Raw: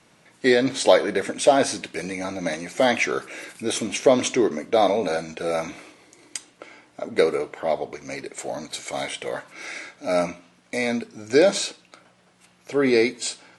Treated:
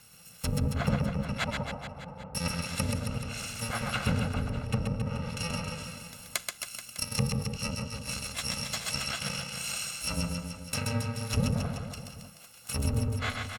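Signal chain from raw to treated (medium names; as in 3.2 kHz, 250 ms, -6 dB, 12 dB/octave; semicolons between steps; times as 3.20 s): bit-reversed sample order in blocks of 128 samples; 1.44–2.35 s: four-pole ladder low-pass 1 kHz, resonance 45%; low-pass that closes with the level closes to 490 Hz, closed at -17.5 dBFS; reverse bouncing-ball echo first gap 130 ms, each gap 1.1×, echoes 5; trim +3.5 dB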